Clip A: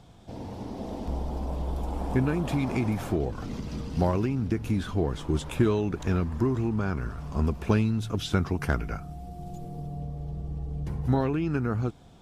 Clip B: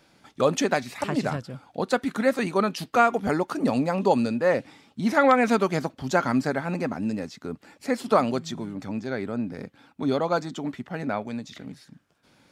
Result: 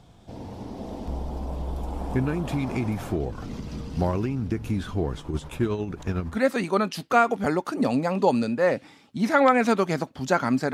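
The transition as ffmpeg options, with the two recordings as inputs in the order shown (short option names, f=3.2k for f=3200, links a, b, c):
-filter_complex "[0:a]asplit=3[a][b][c];[a]afade=t=out:st=5.15:d=0.02[d];[b]tremolo=f=11:d=0.54,afade=t=in:st=5.15:d=0.02,afade=t=out:st=6.38:d=0.02[e];[c]afade=t=in:st=6.38:d=0.02[f];[d][e][f]amix=inputs=3:normalize=0,apad=whole_dur=10.73,atrim=end=10.73,atrim=end=6.38,asetpts=PTS-STARTPTS[g];[1:a]atrim=start=2.13:end=6.56,asetpts=PTS-STARTPTS[h];[g][h]acrossfade=d=0.08:c1=tri:c2=tri"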